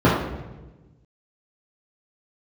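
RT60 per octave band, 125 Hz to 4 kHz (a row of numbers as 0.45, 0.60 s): 1.8, 1.5, 1.3, 1.0, 0.90, 0.80 s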